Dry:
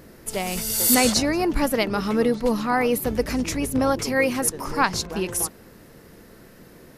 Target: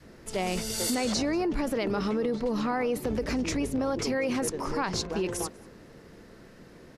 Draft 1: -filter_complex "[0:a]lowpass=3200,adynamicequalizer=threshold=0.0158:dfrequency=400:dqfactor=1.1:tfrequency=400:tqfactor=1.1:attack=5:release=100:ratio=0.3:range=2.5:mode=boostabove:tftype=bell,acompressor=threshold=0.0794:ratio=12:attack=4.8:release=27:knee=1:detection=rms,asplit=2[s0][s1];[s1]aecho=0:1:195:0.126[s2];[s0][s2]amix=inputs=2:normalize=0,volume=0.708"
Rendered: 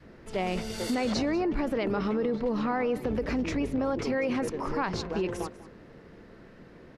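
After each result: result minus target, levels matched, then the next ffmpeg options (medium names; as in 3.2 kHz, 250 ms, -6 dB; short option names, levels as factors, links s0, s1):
8 kHz band -10.5 dB; echo-to-direct +8.5 dB
-filter_complex "[0:a]lowpass=6900,adynamicequalizer=threshold=0.0158:dfrequency=400:dqfactor=1.1:tfrequency=400:tqfactor=1.1:attack=5:release=100:ratio=0.3:range=2.5:mode=boostabove:tftype=bell,acompressor=threshold=0.0794:ratio=12:attack=4.8:release=27:knee=1:detection=rms,asplit=2[s0][s1];[s1]aecho=0:1:195:0.126[s2];[s0][s2]amix=inputs=2:normalize=0,volume=0.708"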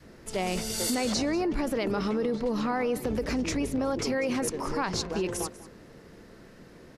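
echo-to-direct +8.5 dB
-filter_complex "[0:a]lowpass=6900,adynamicequalizer=threshold=0.0158:dfrequency=400:dqfactor=1.1:tfrequency=400:tqfactor=1.1:attack=5:release=100:ratio=0.3:range=2.5:mode=boostabove:tftype=bell,acompressor=threshold=0.0794:ratio=12:attack=4.8:release=27:knee=1:detection=rms,asplit=2[s0][s1];[s1]aecho=0:1:195:0.0473[s2];[s0][s2]amix=inputs=2:normalize=0,volume=0.708"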